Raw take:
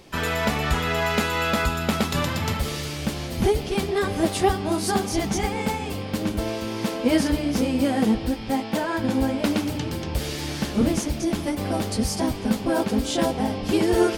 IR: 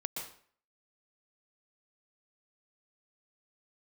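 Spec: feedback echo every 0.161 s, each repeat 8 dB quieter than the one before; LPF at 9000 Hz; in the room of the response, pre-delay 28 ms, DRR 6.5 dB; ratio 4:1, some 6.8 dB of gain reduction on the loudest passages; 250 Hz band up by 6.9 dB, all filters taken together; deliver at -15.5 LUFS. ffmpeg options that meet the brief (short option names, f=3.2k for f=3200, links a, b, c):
-filter_complex "[0:a]lowpass=9k,equalizer=f=250:t=o:g=8.5,acompressor=threshold=-18dB:ratio=4,aecho=1:1:161|322|483|644|805:0.398|0.159|0.0637|0.0255|0.0102,asplit=2[a][b];[1:a]atrim=start_sample=2205,adelay=28[c];[b][c]afir=irnorm=-1:irlink=0,volume=-7.5dB[d];[a][d]amix=inputs=2:normalize=0,volume=6.5dB"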